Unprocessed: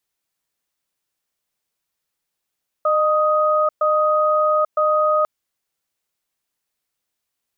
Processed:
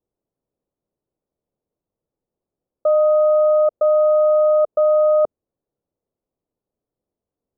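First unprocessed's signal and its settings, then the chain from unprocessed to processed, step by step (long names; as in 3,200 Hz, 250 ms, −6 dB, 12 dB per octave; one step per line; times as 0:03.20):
tone pair in a cadence 611 Hz, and 1,250 Hz, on 0.84 s, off 0.12 s, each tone −17 dBFS 2.40 s
low-pass filter 1,000 Hz 24 dB per octave
low shelf with overshoot 660 Hz +7.5 dB, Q 1.5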